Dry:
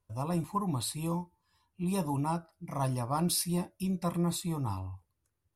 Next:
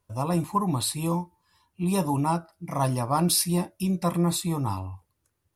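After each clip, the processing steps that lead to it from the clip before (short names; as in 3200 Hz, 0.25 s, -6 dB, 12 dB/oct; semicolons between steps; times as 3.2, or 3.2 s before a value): low shelf 81 Hz -8 dB; gain +7.5 dB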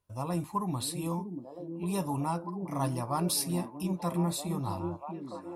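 delay with a stepping band-pass 0.638 s, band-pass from 280 Hz, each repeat 0.7 oct, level -2 dB; gain -7 dB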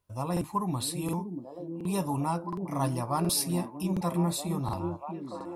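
crackling interface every 0.72 s, samples 2048, repeat, from 0.32; gain +2 dB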